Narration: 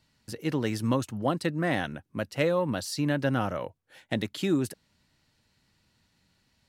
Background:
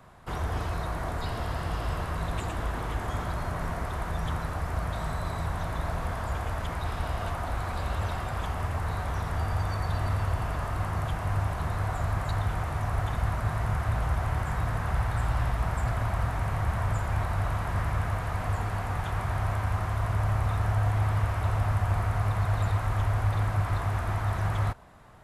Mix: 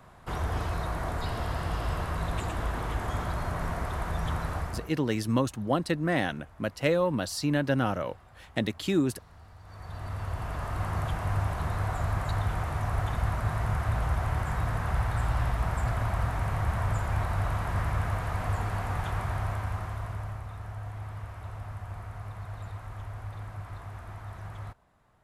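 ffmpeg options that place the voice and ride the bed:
ffmpeg -i stem1.wav -i stem2.wav -filter_complex "[0:a]adelay=4450,volume=0.5dB[link_01];[1:a]volume=22dB,afade=type=out:start_time=4.57:duration=0.35:silence=0.0749894,afade=type=in:start_time=9.62:duration=1.32:silence=0.0794328,afade=type=out:start_time=19.06:duration=1.39:silence=0.237137[link_02];[link_01][link_02]amix=inputs=2:normalize=0" out.wav

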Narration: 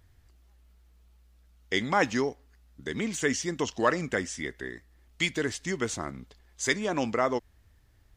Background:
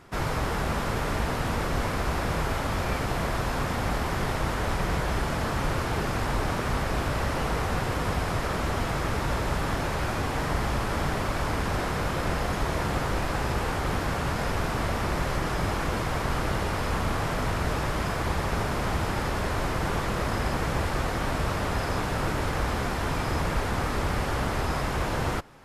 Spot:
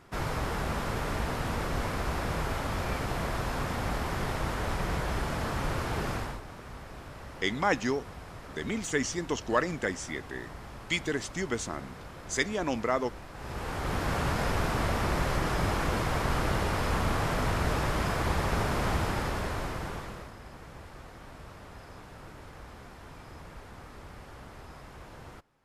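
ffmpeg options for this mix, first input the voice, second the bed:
ffmpeg -i stem1.wav -i stem2.wav -filter_complex "[0:a]adelay=5700,volume=-2dB[link_01];[1:a]volume=12dB,afade=type=out:start_time=6.12:duration=0.29:silence=0.223872,afade=type=in:start_time=13.34:duration=0.84:silence=0.158489,afade=type=out:start_time=18.91:duration=1.42:silence=0.11885[link_02];[link_01][link_02]amix=inputs=2:normalize=0" out.wav

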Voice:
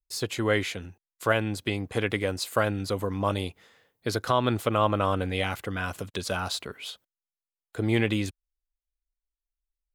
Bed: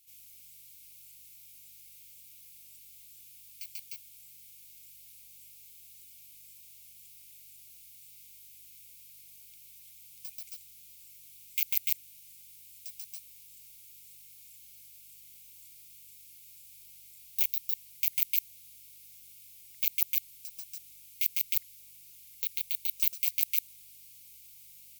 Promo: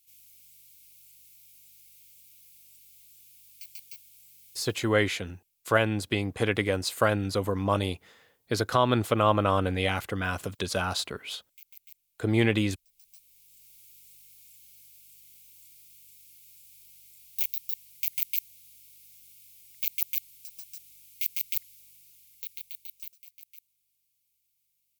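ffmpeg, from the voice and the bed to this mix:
ffmpeg -i stem1.wav -i stem2.wav -filter_complex "[0:a]adelay=4450,volume=1dB[link_01];[1:a]volume=19.5dB,afade=type=out:start_time=4.54:duration=0.43:silence=0.0944061,afade=type=in:start_time=12.89:duration=0.92:silence=0.0841395,afade=type=out:start_time=21.73:duration=1.51:silence=0.0841395[link_02];[link_01][link_02]amix=inputs=2:normalize=0" out.wav

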